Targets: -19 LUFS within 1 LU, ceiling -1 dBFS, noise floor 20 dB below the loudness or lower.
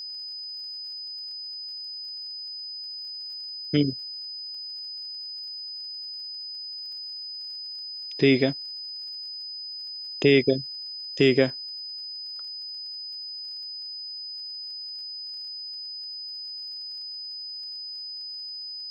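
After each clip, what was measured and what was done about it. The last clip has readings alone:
tick rate 44 per s; steady tone 5 kHz; tone level -34 dBFS; loudness -29.5 LUFS; peak level -6.5 dBFS; loudness target -19.0 LUFS
-> de-click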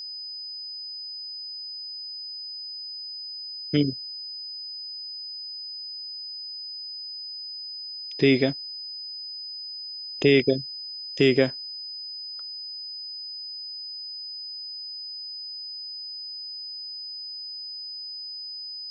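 tick rate 0 per s; steady tone 5 kHz; tone level -34 dBFS
-> band-stop 5 kHz, Q 30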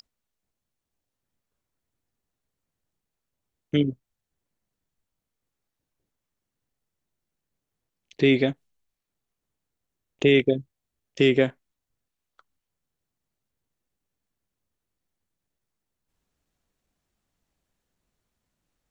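steady tone not found; loudness -23.0 LUFS; peak level -7.0 dBFS; loudness target -19.0 LUFS
-> trim +4 dB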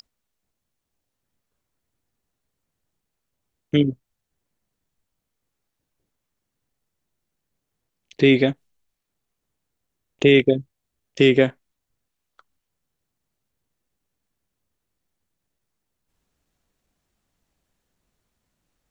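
loudness -19.0 LUFS; peak level -3.0 dBFS; noise floor -81 dBFS

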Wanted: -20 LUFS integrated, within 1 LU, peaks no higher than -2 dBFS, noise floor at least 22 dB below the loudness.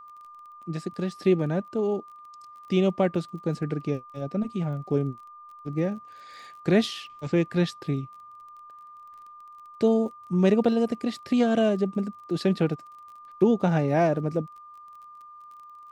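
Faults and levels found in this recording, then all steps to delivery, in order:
tick rate 23 per s; steady tone 1.2 kHz; tone level -44 dBFS; loudness -26.0 LUFS; peak level -9.5 dBFS; loudness target -20.0 LUFS
-> de-click; band-stop 1.2 kHz, Q 30; trim +6 dB

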